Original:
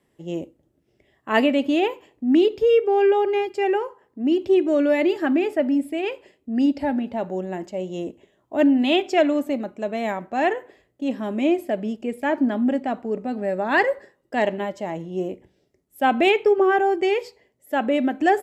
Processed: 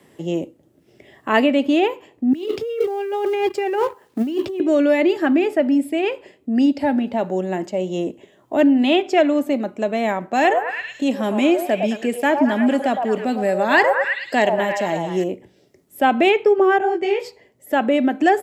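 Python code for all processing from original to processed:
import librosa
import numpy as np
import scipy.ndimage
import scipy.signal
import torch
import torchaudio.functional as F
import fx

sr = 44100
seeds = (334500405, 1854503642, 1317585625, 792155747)

y = fx.chain(x, sr, fx.law_mismatch(coded='A'),
    fx.over_compress(threshold_db=-28.0, ratio=-1.0), at=(2.33, 4.6))
y = fx.chain(y, sr, fx.high_shelf(hz=3200.0, db=10.5),
    fx.echo_stepped(ms=108, hz=760.0, octaves=0.7, feedback_pct=70, wet_db=-2), at=(10.33, 15.24))
y = fx.chain(y, sr, fx.high_shelf(hz=6800.0, db=-10.5),
    fx.detune_double(cents=51), at=(16.78, 17.2))
y = scipy.signal.sosfilt(scipy.signal.butter(2, 92.0, 'highpass', fs=sr, output='sos'), y)
y = fx.band_squash(y, sr, depth_pct=40)
y = y * librosa.db_to_amplitude(3.5)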